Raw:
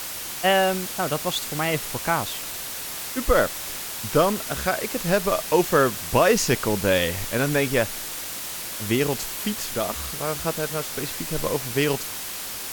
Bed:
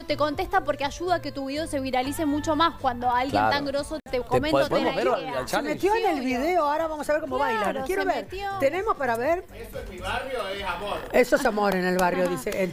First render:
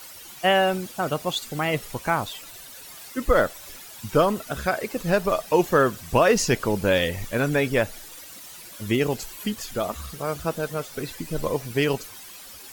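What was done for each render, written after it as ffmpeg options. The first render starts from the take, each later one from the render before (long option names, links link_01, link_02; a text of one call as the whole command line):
ffmpeg -i in.wav -af "afftdn=noise_reduction=13:noise_floor=-33" out.wav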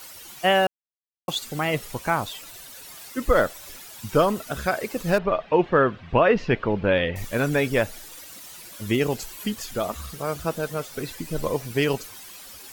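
ffmpeg -i in.wav -filter_complex "[0:a]asettb=1/sr,asplit=3[link_01][link_02][link_03];[link_01]atrim=end=5.184[link_04];[link_02]atrim=start=5.18:end=7.16,asetpts=PTS-STARTPTS,afade=type=in:duration=0.004:curve=qsin,afade=type=out:start_time=1.976:duration=0.004:curve=qsin,lowpass=frequency=3100:width=0.5412,lowpass=frequency=3100:width=1.3066[link_05];[link_03]atrim=start=7.156[link_06];[link_04][link_05]acrossfade=duration=0.004:curve1=hsin:curve2=qsin[link_07];[link_07][link_06]acrossfade=duration=0.004:curve1=qsin:curve2=hsin,asplit=3[link_08][link_09][link_10];[link_08]atrim=end=0.67,asetpts=PTS-STARTPTS,afade=type=out:start_time=0.666:duration=0.004:curve=hsin[link_11];[link_09]atrim=start=0.67:end=1.28,asetpts=PTS-STARTPTS,volume=0[link_12];[link_10]atrim=start=1.28,asetpts=PTS-STARTPTS,afade=type=in:duration=0.004:curve=hsin[link_13];[link_11][link_12][link_13]concat=n=3:v=0:a=1" out.wav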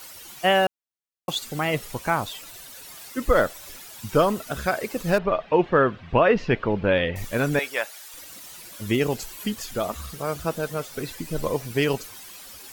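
ffmpeg -i in.wav -filter_complex "[0:a]asettb=1/sr,asplit=3[link_01][link_02][link_03];[link_01]atrim=end=4.264[link_04];[link_02]atrim=start=4.26:end=5.06,asetpts=PTS-STARTPTS,afade=type=in:duration=0.004:curve=qsin,afade=type=out:start_time=0.796:duration=0.004:curve=qsin,acrusher=bits=7:mode=log:mix=0:aa=0.000001[link_05];[link_03]atrim=start=5.056[link_06];[link_04][link_05]acrossfade=duration=0.004:curve1=hsin:curve2=qsin[link_07];[link_07][link_06]acrossfade=duration=0.004:curve1=qsin:curve2=hsin,asettb=1/sr,asplit=3[link_08][link_09][link_10];[link_08]atrim=end=7.594[link_11];[link_09]atrim=start=7.59:end=8.14,asetpts=PTS-STARTPTS,afade=type=in:duration=0.004:curve=qsin,afade=type=out:start_time=0.546:duration=0.004:curve=qsin,highpass=800[link_12];[link_10]atrim=start=8.136[link_13];[link_11][link_12]acrossfade=duration=0.004:curve1=hsin:curve2=qsin[link_14];[link_14][link_13]acrossfade=duration=0.004:curve1=qsin:curve2=hsin" out.wav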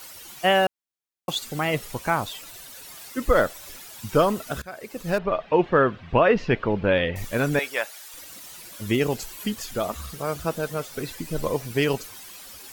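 ffmpeg -i in.wav -filter_complex "[0:a]asplit=2[link_01][link_02];[link_01]atrim=end=4.62,asetpts=PTS-STARTPTS,afade=type=out:start_time=4.616:duration=0.004:curve=hsin:silence=0.0841395[link_03];[link_02]atrim=start=4.62,asetpts=PTS-STARTPTS,afade=type=in:duration=1.1:curve=qsin:silence=0.0841395[link_04];[link_03][link_04]concat=n=2:v=0:a=1" out.wav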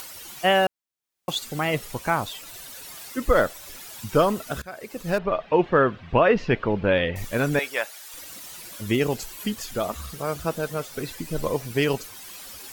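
ffmpeg -i in.wav -af "acompressor=mode=upward:threshold=-35dB:ratio=2.5" out.wav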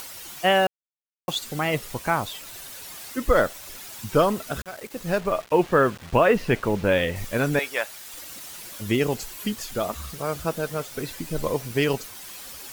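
ffmpeg -i in.wav -af "acrusher=bits=6:mix=0:aa=0.000001" out.wav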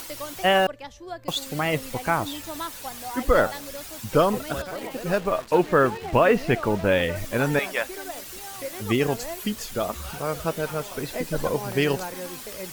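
ffmpeg -i in.wav -i bed.wav -filter_complex "[1:a]volume=-12dB[link_01];[0:a][link_01]amix=inputs=2:normalize=0" out.wav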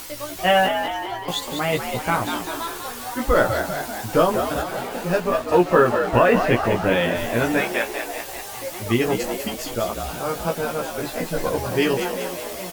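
ffmpeg -i in.wav -filter_complex "[0:a]asplit=2[link_01][link_02];[link_02]adelay=17,volume=-2.5dB[link_03];[link_01][link_03]amix=inputs=2:normalize=0,asplit=2[link_04][link_05];[link_05]asplit=8[link_06][link_07][link_08][link_09][link_10][link_11][link_12][link_13];[link_06]adelay=195,afreqshift=66,volume=-7.5dB[link_14];[link_07]adelay=390,afreqshift=132,volume=-11.9dB[link_15];[link_08]adelay=585,afreqshift=198,volume=-16.4dB[link_16];[link_09]adelay=780,afreqshift=264,volume=-20.8dB[link_17];[link_10]adelay=975,afreqshift=330,volume=-25.2dB[link_18];[link_11]adelay=1170,afreqshift=396,volume=-29.7dB[link_19];[link_12]adelay=1365,afreqshift=462,volume=-34.1dB[link_20];[link_13]adelay=1560,afreqshift=528,volume=-38.6dB[link_21];[link_14][link_15][link_16][link_17][link_18][link_19][link_20][link_21]amix=inputs=8:normalize=0[link_22];[link_04][link_22]amix=inputs=2:normalize=0" out.wav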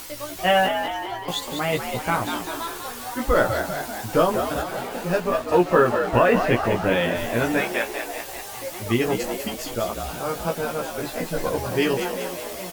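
ffmpeg -i in.wav -af "volume=-1.5dB" out.wav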